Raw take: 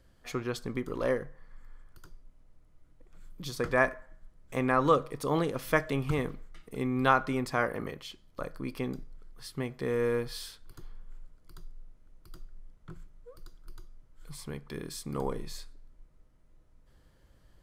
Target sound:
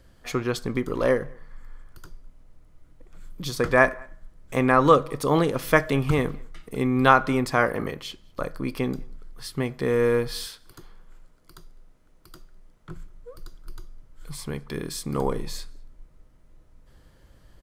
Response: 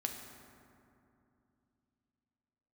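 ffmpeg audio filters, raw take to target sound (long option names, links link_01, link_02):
-filter_complex "[0:a]asettb=1/sr,asplit=3[link_01][link_02][link_03];[link_01]atrim=end=10.474[link_04];[link_02]atrim=start=10.47:end=12.9,asetpts=PTS-STARTPTS,afade=type=in:duration=0.004:curve=qsin,afade=type=out:start_time=2.426:duration=0.004:curve=qsin,lowshelf=frequency=130:gain=-11.5[link_05];[link_03]atrim=start=12.896[link_06];[link_04][link_05]acrossfade=duration=0.004:curve1=hsin:curve2=qsin[link_07];[link_07][link_06]acrossfade=duration=0.004:curve1=qsin:curve2=hsin,asplit=2[link_08][link_09];[link_09]adelay=204.1,volume=-28dB,highshelf=frequency=4000:gain=-4.59[link_10];[link_08][link_10]amix=inputs=2:normalize=0,volume=7.5dB"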